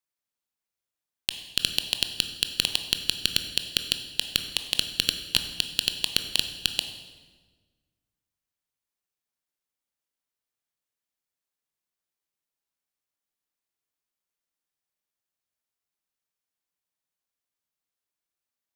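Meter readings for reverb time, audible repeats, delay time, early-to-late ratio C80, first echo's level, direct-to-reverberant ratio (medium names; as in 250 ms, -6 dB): 1.4 s, no echo, no echo, 10.5 dB, no echo, 7.0 dB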